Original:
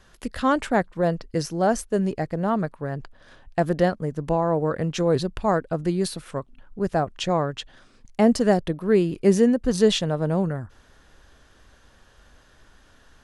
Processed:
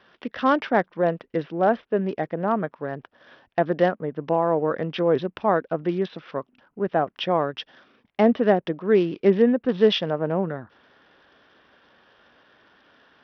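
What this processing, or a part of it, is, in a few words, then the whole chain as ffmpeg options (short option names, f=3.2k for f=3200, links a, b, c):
Bluetooth headset: -af "highpass=230,aresample=8000,aresample=44100,volume=1.5dB" -ar 44100 -c:a sbc -b:a 64k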